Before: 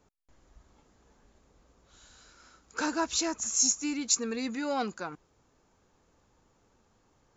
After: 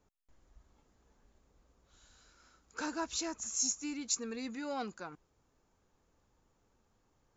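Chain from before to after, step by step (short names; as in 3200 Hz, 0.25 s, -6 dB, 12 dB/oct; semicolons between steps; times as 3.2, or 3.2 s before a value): low shelf 63 Hz +6 dB; gain -7.5 dB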